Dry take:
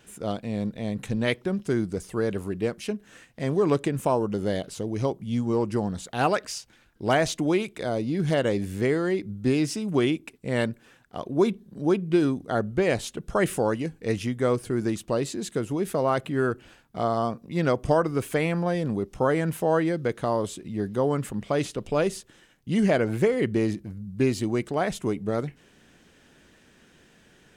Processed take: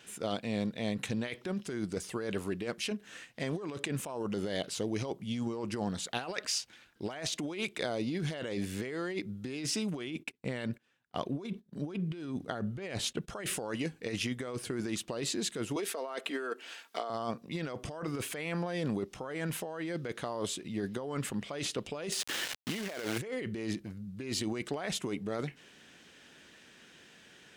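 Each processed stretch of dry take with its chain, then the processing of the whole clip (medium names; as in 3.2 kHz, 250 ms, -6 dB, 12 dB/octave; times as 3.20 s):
10.07–13.28 s: gate -47 dBFS, range -20 dB + tone controls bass +5 dB, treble -2 dB
15.76–17.10 s: high-pass 310 Hz 24 dB/octave + comb 4.4 ms, depth 33% + tape noise reduction on one side only encoder only
22.12–23.18 s: tone controls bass -11 dB, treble -3 dB + companded quantiser 4-bit + level flattener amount 50%
whole clip: high-pass 160 Hz 6 dB/octave; peaking EQ 3.4 kHz +7 dB 2.4 oct; compressor with a negative ratio -29 dBFS, ratio -1; trim -6.5 dB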